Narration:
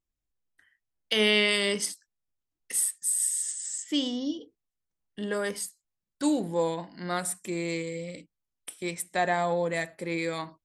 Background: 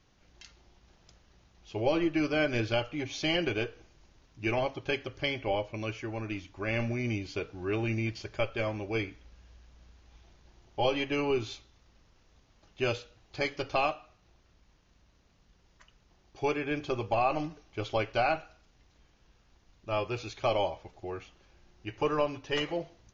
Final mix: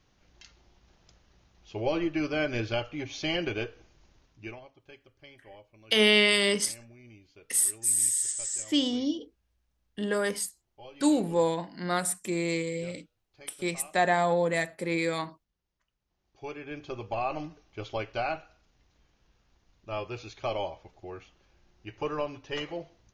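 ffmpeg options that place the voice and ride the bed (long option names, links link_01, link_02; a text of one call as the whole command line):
ffmpeg -i stem1.wav -i stem2.wav -filter_complex "[0:a]adelay=4800,volume=2dB[link_01];[1:a]volume=16dB,afade=type=out:start_time=4.16:duration=0.44:silence=0.105925,afade=type=in:start_time=15.99:duration=1.26:silence=0.141254[link_02];[link_01][link_02]amix=inputs=2:normalize=0" out.wav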